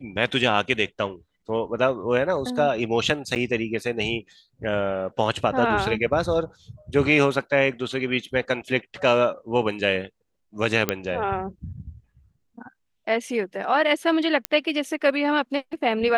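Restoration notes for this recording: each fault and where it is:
3.35–3.36 s: dropout 8.8 ms
10.89 s: pop -6 dBFS
14.45 s: pop -7 dBFS

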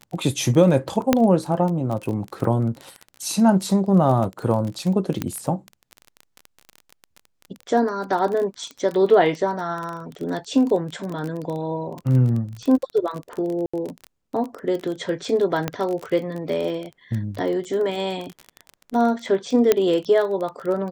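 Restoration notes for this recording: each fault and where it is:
crackle 24 per s -26 dBFS
1.13 s: pop -2 dBFS
5.22 s: pop -10 dBFS
13.66–13.73 s: dropout 75 ms
15.68 s: pop -9 dBFS
19.72 s: pop -3 dBFS

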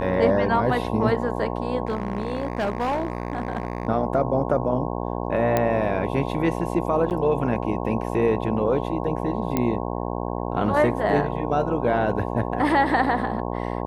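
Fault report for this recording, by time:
buzz 60 Hz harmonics 18 -28 dBFS
1.85–3.87 s: clipped -20 dBFS
5.57 s: pop -8 dBFS
7.10–7.11 s: dropout 8.8 ms
9.57 s: pop -9 dBFS

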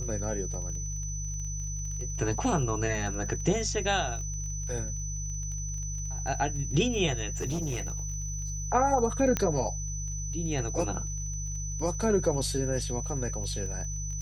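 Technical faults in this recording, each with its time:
crackle 26 per s -38 dBFS
hum 50 Hz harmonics 3 -35 dBFS
whine 6 kHz -37 dBFS
7.32–8.68 s: clipped -27.5 dBFS
9.37 s: pop -12 dBFS

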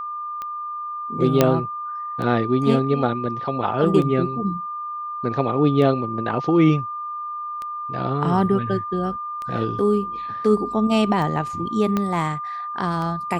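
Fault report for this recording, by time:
tick 33 1/3 rpm -18 dBFS
whine 1.2 kHz -27 dBFS
1.41 s: pop -1 dBFS
11.97 s: pop -10 dBFS

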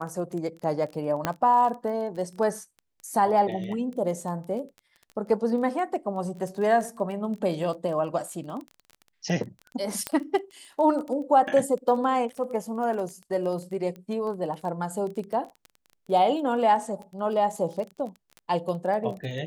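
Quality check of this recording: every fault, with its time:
crackle 17 per s -33 dBFS
1.25 s: pop -10 dBFS
10.07 s: pop -11 dBFS

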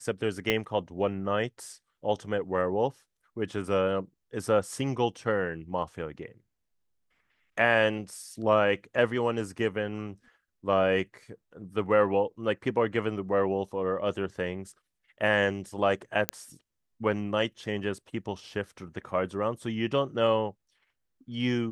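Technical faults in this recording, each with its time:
0.50 s: pop -11 dBFS
16.29 s: pop -7 dBFS

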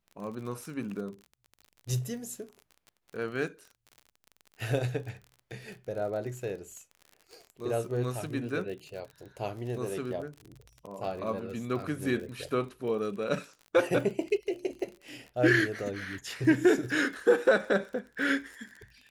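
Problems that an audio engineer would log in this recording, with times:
crackle 39 per s -39 dBFS

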